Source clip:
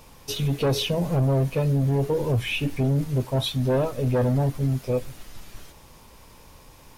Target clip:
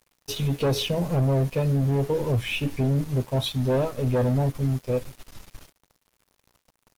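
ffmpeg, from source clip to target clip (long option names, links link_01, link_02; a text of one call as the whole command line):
ffmpeg -i in.wav -af "aeval=exprs='sgn(val(0))*max(abs(val(0))-0.00708,0)':channel_layout=same" out.wav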